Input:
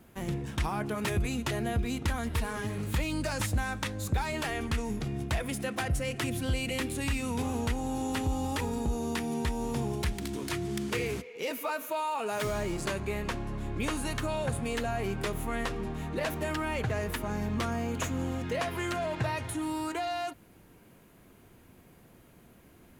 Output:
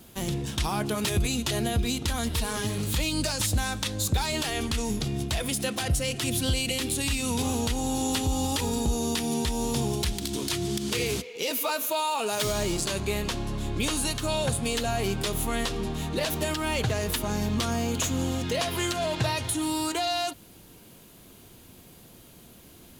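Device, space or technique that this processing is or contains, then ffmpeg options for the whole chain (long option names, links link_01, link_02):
over-bright horn tweeter: -af "highshelf=frequency=2700:width_type=q:width=1.5:gain=8,alimiter=limit=-21dB:level=0:latency=1:release=99,volume=4.5dB"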